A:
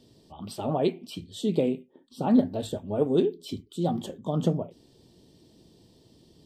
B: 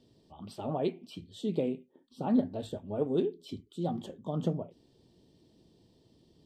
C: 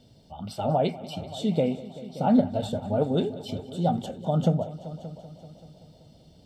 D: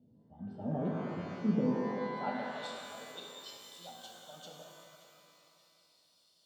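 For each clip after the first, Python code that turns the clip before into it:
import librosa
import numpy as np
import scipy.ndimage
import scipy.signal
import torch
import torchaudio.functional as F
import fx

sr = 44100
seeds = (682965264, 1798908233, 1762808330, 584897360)

y1 = fx.high_shelf(x, sr, hz=6400.0, db=-9.0)
y1 = y1 * 10.0 ** (-6.0 / 20.0)
y2 = y1 + 0.65 * np.pad(y1, (int(1.4 * sr / 1000.0), 0))[:len(y1)]
y2 = fx.echo_heads(y2, sr, ms=192, heads='all three', feedback_pct=46, wet_db=-19.5)
y2 = y2 * 10.0 ** (7.5 / 20.0)
y3 = fx.filter_sweep_bandpass(y2, sr, from_hz=220.0, to_hz=4700.0, start_s=1.65, end_s=2.64, q=1.5)
y3 = fx.rev_shimmer(y3, sr, seeds[0], rt60_s=2.3, semitones=12, shimmer_db=-8, drr_db=-0.5)
y3 = y3 * 10.0 ** (-5.5 / 20.0)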